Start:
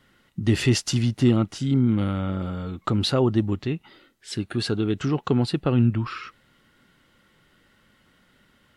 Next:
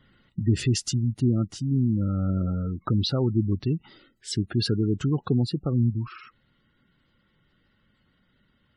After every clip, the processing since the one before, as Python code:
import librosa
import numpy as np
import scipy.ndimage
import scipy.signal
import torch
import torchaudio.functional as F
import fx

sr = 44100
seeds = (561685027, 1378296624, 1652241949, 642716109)

y = fx.spec_gate(x, sr, threshold_db=-20, keep='strong')
y = fx.bass_treble(y, sr, bass_db=7, treble_db=8)
y = fx.rider(y, sr, range_db=4, speed_s=0.5)
y = F.gain(torch.from_numpy(y), -6.0).numpy()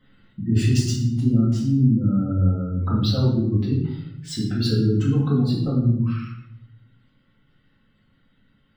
y = scipy.ndimage.median_filter(x, 3, mode='constant')
y = y + 10.0 ** (-17.0 / 20.0) * np.pad(y, (int(112 * sr / 1000.0), 0))[:len(y)]
y = fx.room_shoebox(y, sr, seeds[0], volume_m3=190.0, walls='mixed', distance_m=2.0)
y = F.gain(torch.from_numpy(y), -5.0).numpy()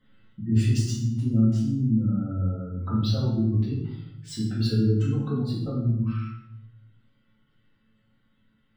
y = fx.comb_fb(x, sr, f0_hz=110.0, decay_s=0.45, harmonics='all', damping=0.0, mix_pct=80)
y = F.gain(torch.from_numpy(y), 3.5).numpy()